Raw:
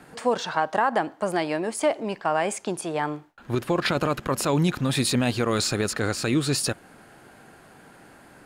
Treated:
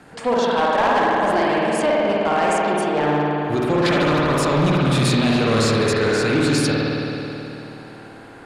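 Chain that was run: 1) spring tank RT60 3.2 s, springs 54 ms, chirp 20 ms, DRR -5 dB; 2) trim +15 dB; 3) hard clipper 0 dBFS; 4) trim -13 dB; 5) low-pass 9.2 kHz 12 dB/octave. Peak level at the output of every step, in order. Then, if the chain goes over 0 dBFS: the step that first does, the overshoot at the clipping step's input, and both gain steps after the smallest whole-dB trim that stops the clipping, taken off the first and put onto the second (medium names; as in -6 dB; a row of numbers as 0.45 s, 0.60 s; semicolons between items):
-5.0 dBFS, +10.0 dBFS, 0.0 dBFS, -13.0 dBFS, -12.0 dBFS; step 2, 10.0 dB; step 2 +5 dB, step 4 -3 dB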